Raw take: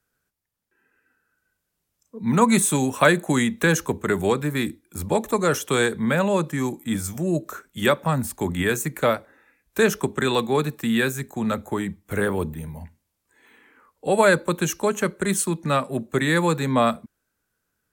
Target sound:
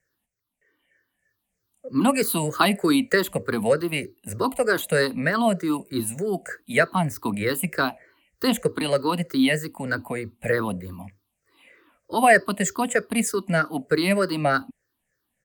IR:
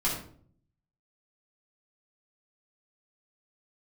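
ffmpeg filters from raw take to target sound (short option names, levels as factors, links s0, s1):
-af "afftfilt=real='re*pow(10,16/40*sin(2*PI*(0.54*log(max(b,1)*sr/1024/100)/log(2)-(-2.8)*(pts-256)/sr)))':imag='im*pow(10,16/40*sin(2*PI*(0.54*log(max(b,1)*sr/1024/100)/log(2)-(-2.8)*(pts-256)/sr)))':win_size=1024:overlap=0.75,asetrate=51156,aresample=44100,volume=0.668"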